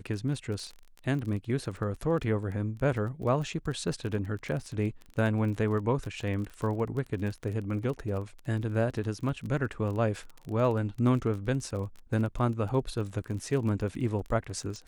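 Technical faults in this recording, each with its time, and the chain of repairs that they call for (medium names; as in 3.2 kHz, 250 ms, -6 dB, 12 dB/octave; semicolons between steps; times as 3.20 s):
crackle 27 per s -35 dBFS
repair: de-click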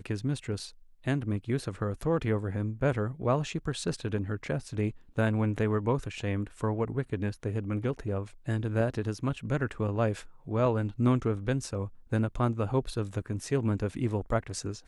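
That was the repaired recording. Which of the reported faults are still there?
nothing left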